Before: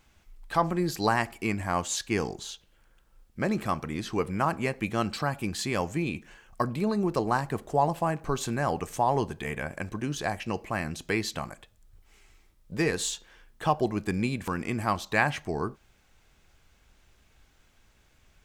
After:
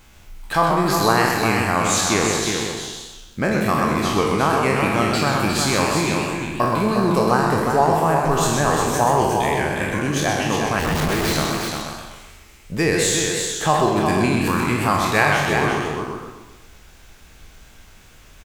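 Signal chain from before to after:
peak hold with a decay on every bin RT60 0.82 s
high-shelf EQ 8,700 Hz +5 dB
in parallel at +2.5 dB: downward compressor, threshold −37 dBFS, peak gain reduction 19 dB
0:10.79–0:11.33: on the sum: comparator with hysteresis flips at −29 dBFS
on a send: single-tap delay 357 ms −5.5 dB
on the sum: feedback echo with a swinging delay time 128 ms, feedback 42%, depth 137 cents, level −5 dB
level +3 dB

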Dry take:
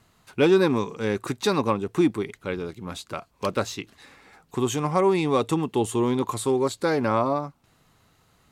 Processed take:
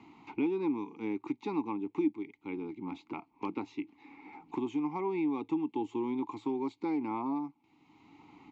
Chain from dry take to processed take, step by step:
formant filter u
downsampling to 16,000 Hz
multiband upward and downward compressor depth 70%

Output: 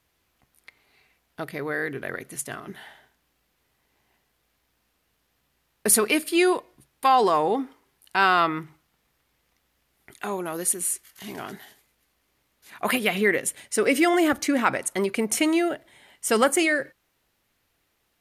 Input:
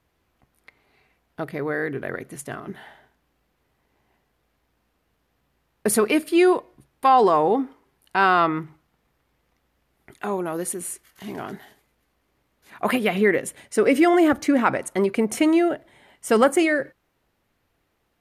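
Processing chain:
high-shelf EQ 2,000 Hz +11 dB
level −4.5 dB

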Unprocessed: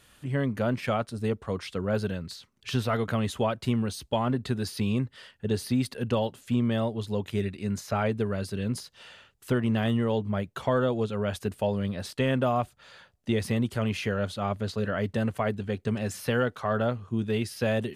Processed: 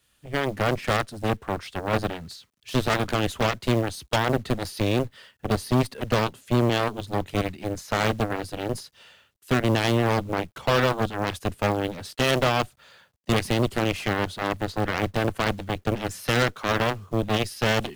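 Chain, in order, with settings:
harmonic generator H 2 −7 dB, 3 −34 dB, 7 −10 dB, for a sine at −14.5 dBFS
log-companded quantiser 6 bits
multiband upward and downward expander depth 40%
level +1.5 dB

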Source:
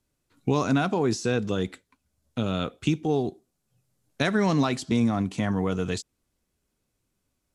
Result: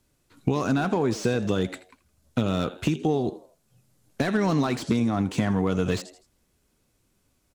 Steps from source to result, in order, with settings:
downward compressor 20 to 1, threshold −27 dBFS, peak gain reduction 10.5 dB
echo with shifted repeats 82 ms, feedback 37%, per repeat +92 Hz, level −18 dB
slew-rate limiting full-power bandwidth 38 Hz
level +8 dB

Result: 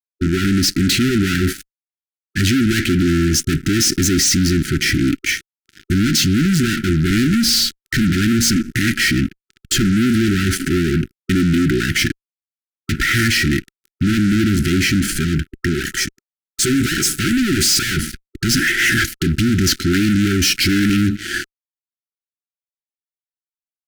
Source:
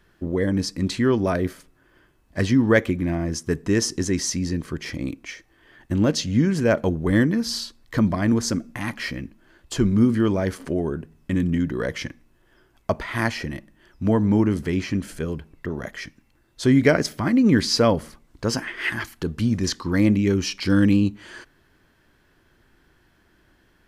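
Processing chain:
0:15.74–0:17.97: octave-band graphic EQ 125/250/500/1,000/2,000/4,000/8,000 Hz −4/−8/+12/+8/−9/−4/+10 dB
fuzz pedal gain 36 dB, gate −45 dBFS
linear-phase brick-wall band-stop 390–1,300 Hz

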